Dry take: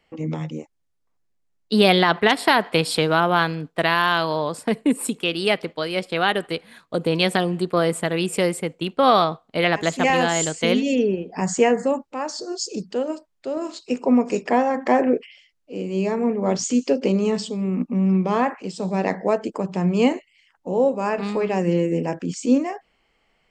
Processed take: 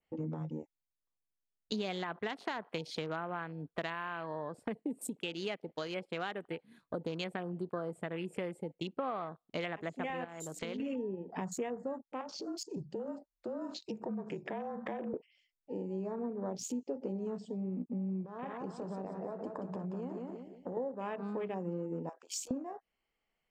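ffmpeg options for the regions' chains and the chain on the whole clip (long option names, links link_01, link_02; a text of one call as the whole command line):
ffmpeg -i in.wav -filter_complex "[0:a]asettb=1/sr,asplit=3[link_01][link_02][link_03];[link_01]atrim=end=10.244[link_04];[link_02]atrim=start=10.24:end=10.8,asetpts=PTS-STARTPTS,afade=type=in:duration=0.004:curve=qsin,afade=type=out:start_time=0.556:duration=0.004:curve=qsin,bandreject=frequency=60:width_type=h:width=6,bandreject=frequency=120:width_type=h:width=6,bandreject=frequency=180:width_type=h:width=6,bandreject=frequency=240:width_type=h:width=6,bandreject=frequency=300:width_type=h:width=6,acompressor=threshold=-30dB:ratio=3:attack=3.2:release=140:knee=1:detection=peak[link_05];[link_03]atrim=start=10.796[link_06];[link_04][link_05]acrossfade=duration=0.004:curve1=hsin:curve2=qsin[link_07];[link_07][link_06]acrossfade=duration=0.004:curve1=qsin:curve2=hsin,asettb=1/sr,asplit=3[link_08][link_09][link_10];[link_08]atrim=end=12.214[link_11];[link_09]atrim=start=12.21:end=15.14,asetpts=PTS-STARTPTS,afade=type=in:duration=0.004:curve=qsin,afade=type=out:start_time=2.926:duration=0.004:curve=qsin,acompressor=threshold=-34dB:ratio=2:attack=3.2:release=140:knee=1:detection=peak,afreqshift=-34[link_12];[link_10]atrim=start=15.136[link_13];[link_11][link_12]acrossfade=duration=0.004:curve1=hsin:curve2=qsin[link_14];[link_14][link_13]acrossfade=duration=0.004:curve1=qsin:curve2=hsin,asettb=1/sr,asplit=3[link_15][link_16][link_17];[link_15]atrim=end=18.254[link_18];[link_16]atrim=start=18.25:end=20.77,asetpts=PTS-STARTPTS,afade=type=in:duration=0.004:curve=qsin,afade=type=out:start_time=2.516:duration=0.004:curve=qsin,acompressor=threshold=-31dB:ratio=6:attack=3.2:release=140:knee=1:detection=peak,aecho=1:1:179|358|537|716|895:0.562|0.225|0.09|0.036|0.0144,atrim=end_sample=111132[link_19];[link_17]atrim=start=20.766[link_20];[link_18][link_19]acrossfade=duration=0.004:curve1=hsin:curve2=qsin[link_21];[link_21][link_20]acrossfade=duration=0.004:curve1=qsin:curve2=hsin,asettb=1/sr,asplit=3[link_22][link_23][link_24];[link_22]atrim=end=22.094[link_25];[link_23]atrim=start=22.09:end=22.51,asetpts=PTS-STARTPTS,afade=type=in:duration=0.004:curve=qsin,afade=type=out:start_time=0.416:duration=0.004:curve=qsin,aemphasis=mode=production:type=cd,acompressor=threshold=-24dB:ratio=6:attack=3.2:release=140:knee=1:detection=peak,highpass=frequency=670:width=0.5412,highpass=frequency=670:width=1.3066[link_26];[link_24]atrim=start=22.506[link_27];[link_25][link_26]acrossfade=duration=0.004:curve1=hsin:curve2=qsin[link_28];[link_28][link_27]acrossfade=duration=0.004:curve1=qsin:curve2=hsin,acompressor=threshold=-34dB:ratio=5,afwtdn=0.00562,adynamicequalizer=threshold=0.002:dfrequency=4900:dqfactor=0.82:tfrequency=4900:tqfactor=0.82:attack=5:release=100:ratio=0.375:range=2:mode=cutabove:tftype=bell,volume=-2.5dB" out.wav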